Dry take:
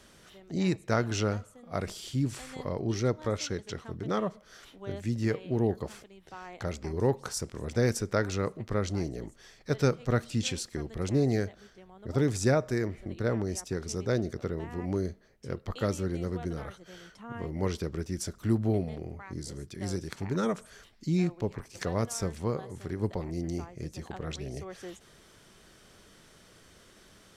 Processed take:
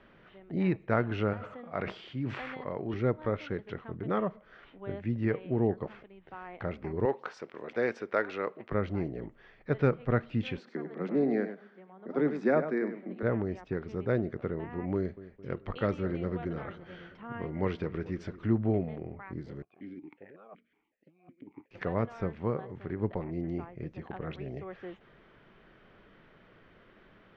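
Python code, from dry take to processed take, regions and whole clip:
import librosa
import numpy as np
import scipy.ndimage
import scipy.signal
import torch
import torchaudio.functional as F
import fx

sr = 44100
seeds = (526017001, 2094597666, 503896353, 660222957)

y = fx.chain(x, sr, fx.highpass(hz=210.0, slope=6),
    fx.peak_eq(hz=310.0, db=-3.0, octaves=2.1),
    fx.sustainer(db_per_s=30.0), at=(1.33, 2.94))
y = fx.chain(y, sr, fx.highpass(hz=360.0, slope=12),
    fx.high_shelf(hz=3200.0, db=8.0), at=(7.05, 8.72))
y = fx.chain(y, sr, fx.steep_highpass(hz=160.0, slope=72),
    fx.peak_eq(hz=2900.0, db=-6.0, octaves=0.47),
    fx.echo_single(ms=99, db=-10.0), at=(10.57, 13.23))
y = fx.chain(y, sr, fx.high_shelf(hz=3000.0, db=8.5),
    fx.echo_filtered(ms=217, feedback_pct=56, hz=2200.0, wet_db=-16), at=(14.95, 18.46))
y = fx.chain(y, sr, fx.law_mismatch(coded='A'),
    fx.over_compress(threshold_db=-33.0, ratio=-0.5),
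    fx.vowel_held(hz=5.4), at=(19.62, 21.71))
y = scipy.signal.sosfilt(scipy.signal.butter(4, 2600.0, 'lowpass', fs=sr, output='sos'), y)
y = fx.peak_eq(y, sr, hz=71.0, db=-9.5, octaves=0.6)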